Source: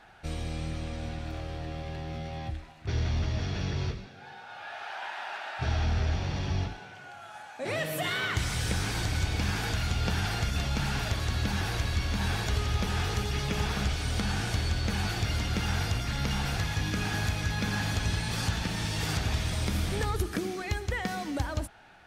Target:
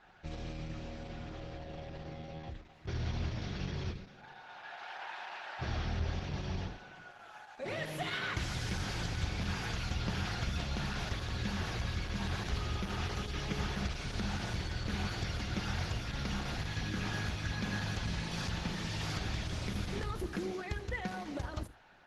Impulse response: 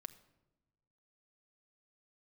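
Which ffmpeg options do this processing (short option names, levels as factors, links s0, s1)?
-filter_complex "[0:a]equalizer=f=8400:w=2.5:g=-9.5[s0];[1:a]atrim=start_sample=2205,atrim=end_sample=3969[s1];[s0][s1]afir=irnorm=-1:irlink=0" -ar 48000 -c:a libopus -b:a 12k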